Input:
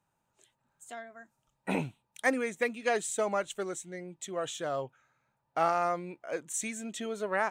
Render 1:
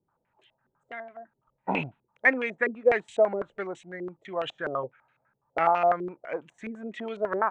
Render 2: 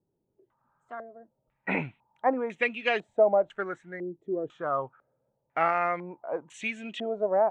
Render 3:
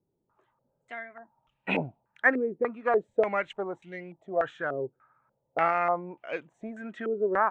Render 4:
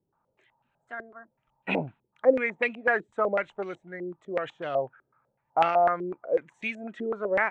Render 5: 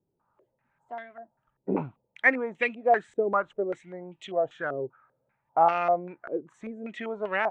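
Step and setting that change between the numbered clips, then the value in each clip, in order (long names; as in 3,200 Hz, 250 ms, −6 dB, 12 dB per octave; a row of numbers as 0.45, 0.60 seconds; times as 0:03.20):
low-pass on a step sequencer, speed: 12, 2, 3.4, 8, 5.1 Hertz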